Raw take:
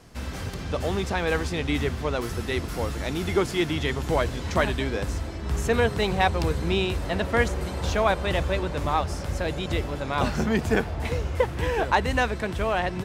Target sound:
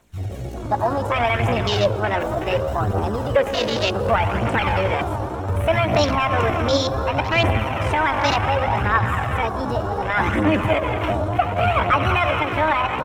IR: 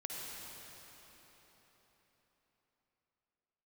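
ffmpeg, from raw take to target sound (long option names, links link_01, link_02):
-filter_complex "[0:a]acontrast=76,lowshelf=frequency=220:gain=-8.5,bandreject=frequency=60:width_type=h:width=6,bandreject=frequency=120:width_type=h:width=6,bandreject=frequency=180:width_type=h:width=6,bandreject=frequency=240:width_type=h:width=6,bandreject=frequency=300:width_type=h:width=6,bandreject=frequency=360:width_type=h:width=6,asplit=6[link_01][link_02][link_03][link_04][link_05][link_06];[link_02]adelay=194,afreqshift=80,volume=-15.5dB[link_07];[link_03]adelay=388,afreqshift=160,volume=-21dB[link_08];[link_04]adelay=582,afreqshift=240,volume=-26.5dB[link_09];[link_05]adelay=776,afreqshift=320,volume=-32dB[link_10];[link_06]adelay=970,afreqshift=400,volume=-37.6dB[link_11];[link_01][link_07][link_08][link_09][link_10][link_11]amix=inputs=6:normalize=0,asplit=2[link_12][link_13];[1:a]atrim=start_sample=2205[link_14];[link_13][link_14]afir=irnorm=-1:irlink=0,volume=-1dB[link_15];[link_12][link_15]amix=inputs=2:normalize=0,asetrate=62367,aresample=44100,atempo=0.707107,lowshelf=frequency=70:gain=10,bandreject=frequency=4700:width=10,alimiter=limit=-6.5dB:level=0:latency=1:release=71,afwtdn=0.0708,aphaser=in_gain=1:out_gain=1:delay=3.6:decay=0.41:speed=0.67:type=triangular,volume=-2.5dB"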